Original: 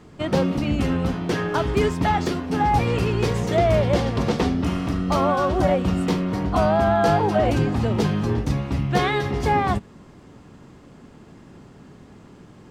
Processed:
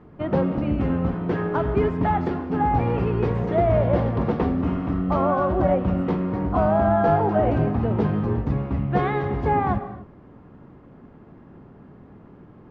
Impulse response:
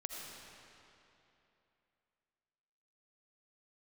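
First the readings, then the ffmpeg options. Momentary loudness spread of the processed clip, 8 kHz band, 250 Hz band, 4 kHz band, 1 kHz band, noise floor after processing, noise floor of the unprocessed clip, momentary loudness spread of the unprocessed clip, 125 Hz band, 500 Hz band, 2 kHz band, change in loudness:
6 LU, under -25 dB, -0.5 dB, under -10 dB, -1.0 dB, -48 dBFS, -47 dBFS, 6 LU, -0.5 dB, -0.5 dB, -5.5 dB, -1.0 dB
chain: -filter_complex "[0:a]lowpass=1.5k,asplit=2[a][b];[1:a]atrim=start_sample=2205,afade=t=out:st=0.34:d=0.01,atrim=end_sample=15435[c];[b][c]afir=irnorm=-1:irlink=0,volume=-3.5dB[d];[a][d]amix=inputs=2:normalize=0,volume=-4dB"

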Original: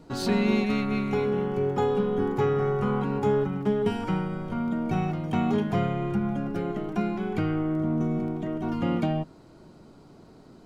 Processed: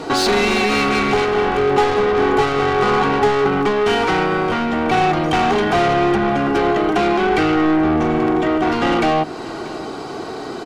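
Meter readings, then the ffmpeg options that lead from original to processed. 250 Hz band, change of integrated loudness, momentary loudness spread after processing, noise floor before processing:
+7.5 dB, +10.5 dB, 9 LU, -52 dBFS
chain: -filter_complex "[0:a]asplit=2[a][b];[b]highpass=f=720:p=1,volume=29dB,asoftclip=type=tanh:threshold=-11.5dB[c];[a][c]amix=inputs=2:normalize=0,lowpass=f=1.8k:p=1,volume=-6dB,equalizer=f=6.7k:w=0.42:g=6,bandreject=f=60:t=h:w=6,bandreject=f=120:t=h:w=6,bandreject=f=180:t=h:w=6,bandreject=f=240:t=h:w=6,bandreject=f=300:t=h:w=6,bandreject=f=360:t=h:w=6,bandreject=f=420:t=h:w=6,asplit=2[d][e];[e]acompressor=threshold=-29dB:ratio=6,volume=2dB[f];[d][f]amix=inputs=2:normalize=0,aecho=1:1:2.6:0.45,asplit=2[g][h];[h]aecho=0:1:635:0.112[i];[g][i]amix=inputs=2:normalize=0"

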